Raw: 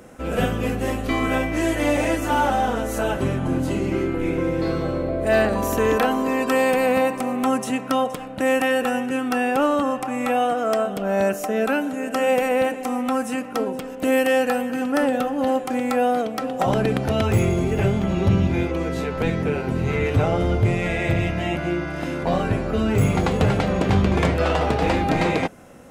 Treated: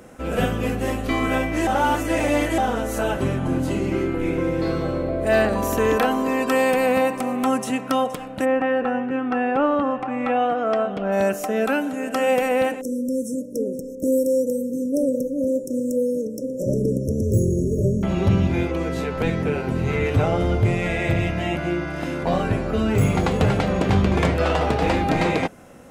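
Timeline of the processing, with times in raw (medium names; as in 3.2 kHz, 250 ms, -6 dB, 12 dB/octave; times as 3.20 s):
1.67–2.58 s: reverse
8.44–11.11 s: low-pass 1.5 kHz -> 3.5 kHz
12.81–18.03 s: brick-wall FIR band-stop 620–5300 Hz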